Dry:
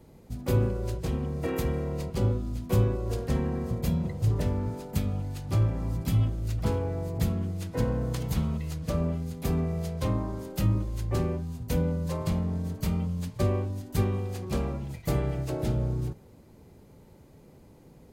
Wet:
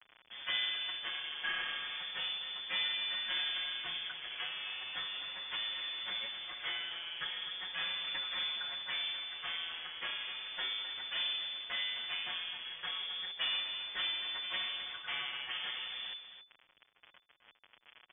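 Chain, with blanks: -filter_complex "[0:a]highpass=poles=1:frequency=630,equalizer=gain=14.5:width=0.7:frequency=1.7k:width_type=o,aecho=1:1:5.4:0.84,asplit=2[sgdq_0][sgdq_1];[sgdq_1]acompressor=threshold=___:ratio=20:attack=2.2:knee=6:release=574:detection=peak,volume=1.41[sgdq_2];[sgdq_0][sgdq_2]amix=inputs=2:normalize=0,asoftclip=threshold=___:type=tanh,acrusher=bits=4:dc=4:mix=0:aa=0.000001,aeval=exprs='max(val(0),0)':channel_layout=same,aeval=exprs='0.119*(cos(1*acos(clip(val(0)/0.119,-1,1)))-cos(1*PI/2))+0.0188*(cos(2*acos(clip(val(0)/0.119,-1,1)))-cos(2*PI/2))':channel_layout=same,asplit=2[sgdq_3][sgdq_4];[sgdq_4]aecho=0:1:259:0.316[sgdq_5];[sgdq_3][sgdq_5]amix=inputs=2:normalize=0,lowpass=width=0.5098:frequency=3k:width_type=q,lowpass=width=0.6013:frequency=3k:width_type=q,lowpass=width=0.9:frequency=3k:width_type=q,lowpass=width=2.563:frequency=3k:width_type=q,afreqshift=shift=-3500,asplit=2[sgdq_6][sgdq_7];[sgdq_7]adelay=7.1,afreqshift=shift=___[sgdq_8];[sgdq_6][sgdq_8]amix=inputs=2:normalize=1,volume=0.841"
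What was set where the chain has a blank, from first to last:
0.00891, 0.126, 0.36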